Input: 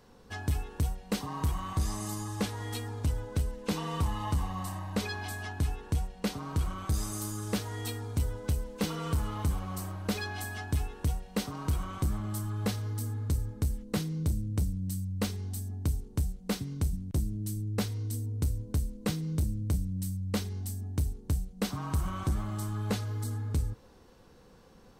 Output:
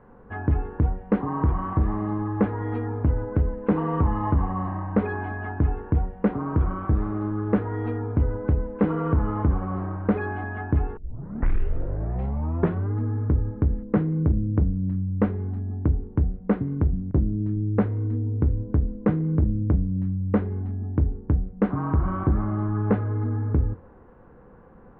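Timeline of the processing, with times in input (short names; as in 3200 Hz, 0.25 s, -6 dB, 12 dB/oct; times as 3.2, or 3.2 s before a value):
10.97 tape start 2.00 s
whole clip: inverse Chebyshev low-pass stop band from 5500 Hz, stop band 60 dB; de-hum 88.73 Hz, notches 8; dynamic EQ 330 Hz, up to +6 dB, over -48 dBFS, Q 1.1; gain +7.5 dB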